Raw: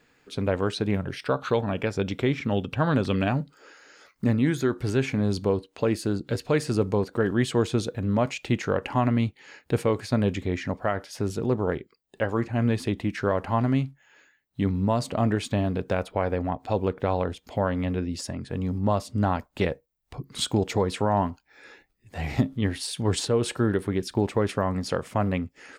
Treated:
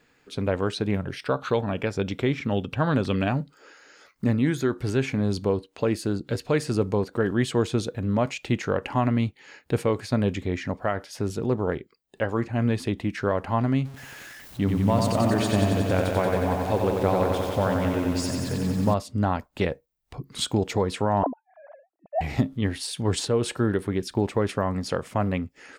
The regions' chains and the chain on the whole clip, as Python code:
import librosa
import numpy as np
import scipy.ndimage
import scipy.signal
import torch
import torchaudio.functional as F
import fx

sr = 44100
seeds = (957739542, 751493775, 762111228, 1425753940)

y = fx.chain(x, sr, fx.zero_step(step_db=-39.0),
    fx.echo_crushed(ms=91, feedback_pct=80, bits=8, wet_db=-4.0), at=(13.85, 18.94))
y = fx.chain(y, sr, fx.sine_speech(),
    fx.lowpass_res(hz=670.0, q=4.5), at=(21.23, 22.21))